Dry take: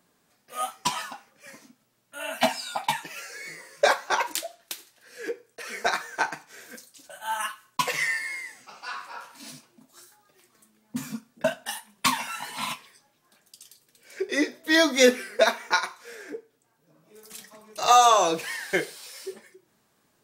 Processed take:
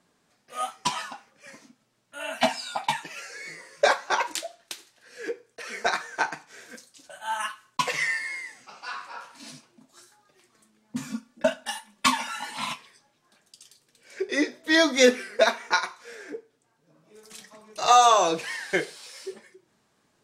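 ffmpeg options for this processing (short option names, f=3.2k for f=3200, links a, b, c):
-filter_complex "[0:a]asettb=1/sr,asplit=3[a][b][c];[a]atrim=end=11.084[d];[b]atrim=start=11.08:end=12.57,asetpts=PTS-STARTPTS,afade=t=in:d=0.004:c=qsin,afade=t=out:st=1.486:d=0.004:c=qsin,aecho=1:1:3.5:0.59,atrim=end_sample=65709[e];[c]atrim=start=12.566[f];[d][e]acrossfade=d=0.004:c1=hsin:c2=qsin[g];[g][f]acrossfade=d=0.004:c1=qsin:c2=hsin,lowpass=8.6k"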